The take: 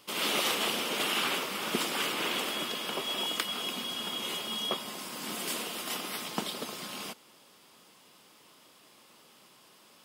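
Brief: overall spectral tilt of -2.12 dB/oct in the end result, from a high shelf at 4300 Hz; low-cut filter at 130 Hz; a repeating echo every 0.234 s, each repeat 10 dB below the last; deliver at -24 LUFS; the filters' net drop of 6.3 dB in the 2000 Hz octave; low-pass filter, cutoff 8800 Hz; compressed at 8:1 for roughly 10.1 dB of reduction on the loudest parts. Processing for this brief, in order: HPF 130 Hz; LPF 8800 Hz; bell 2000 Hz -7.5 dB; high shelf 4300 Hz -4 dB; compressor 8:1, threshold -40 dBFS; feedback echo 0.234 s, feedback 32%, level -10 dB; gain +18 dB

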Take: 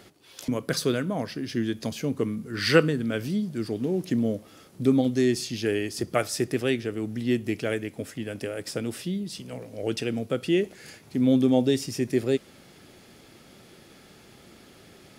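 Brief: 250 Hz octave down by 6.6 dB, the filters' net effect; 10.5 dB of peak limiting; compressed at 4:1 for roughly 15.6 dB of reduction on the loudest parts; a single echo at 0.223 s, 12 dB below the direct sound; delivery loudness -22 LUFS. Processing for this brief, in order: bell 250 Hz -8 dB; compressor 4:1, threshold -33 dBFS; limiter -26.5 dBFS; echo 0.223 s -12 dB; gain +16 dB

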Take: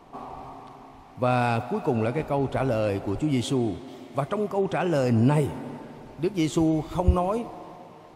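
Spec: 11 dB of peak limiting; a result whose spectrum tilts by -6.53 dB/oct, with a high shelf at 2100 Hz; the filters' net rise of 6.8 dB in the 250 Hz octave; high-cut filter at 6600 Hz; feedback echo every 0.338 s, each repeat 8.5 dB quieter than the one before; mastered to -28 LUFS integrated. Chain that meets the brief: LPF 6600 Hz; bell 250 Hz +8.5 dB; high shelf 2100 Hz +5.5 dB; limiter -15.5 dBFS; feedback echo 0.338 s, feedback 38%, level -8.5 dB; gain -3 dB

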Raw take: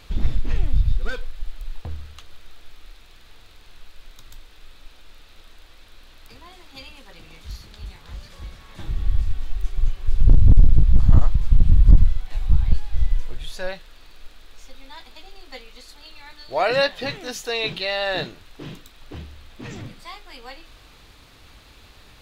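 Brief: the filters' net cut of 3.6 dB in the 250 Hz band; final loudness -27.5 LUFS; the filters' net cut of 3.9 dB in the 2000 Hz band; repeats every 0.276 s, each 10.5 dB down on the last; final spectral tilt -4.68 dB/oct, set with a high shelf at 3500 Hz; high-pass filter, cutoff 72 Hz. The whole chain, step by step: HPF 72 Hz; bell 250 Hz -5.5 dB; bell 2000 Hz -8 dB; high shelf 3500 Hz +8 dB; feedback echo 0.276 s, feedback 30%, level -10.5 dB

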